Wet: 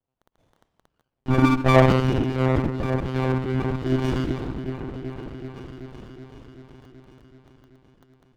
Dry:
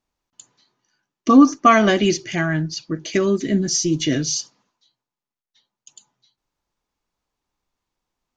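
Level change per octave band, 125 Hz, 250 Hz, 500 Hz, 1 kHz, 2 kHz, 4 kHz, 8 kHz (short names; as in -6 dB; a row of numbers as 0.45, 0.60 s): +5.5 dB, -5.5 dB, -2.0 dB, -6.0 dB, -5.0 dB, -10.0 dB, under -20 dB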